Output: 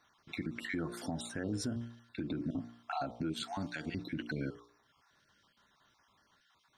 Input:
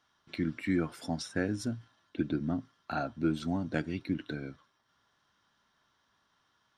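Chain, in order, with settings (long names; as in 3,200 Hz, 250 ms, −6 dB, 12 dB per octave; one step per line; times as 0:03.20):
time-frequency cells dropped at random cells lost 31%
hum removal 58.69 Hz, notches 21
0:03.32–0:03.86: tilt shelving filter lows −6.5 dB, about 1,200 Hz
downward compressor 5 to 1, threshold −33 dBFS, peak gain reduction 9 dB
brickwall limiter −32 dBFS, peak gain reduction 11 dB
level +4.5 dB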